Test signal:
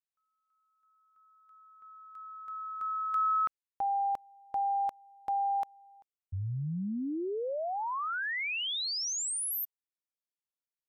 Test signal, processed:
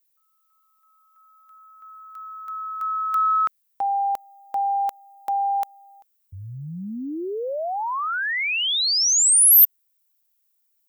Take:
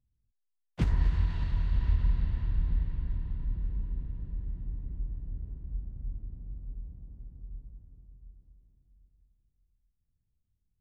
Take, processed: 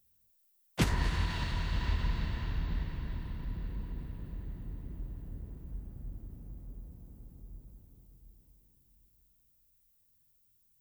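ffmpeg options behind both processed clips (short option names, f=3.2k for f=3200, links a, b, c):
-af "aemphasis=mode=production:type=bsi,acontrast=76,volume=1dB"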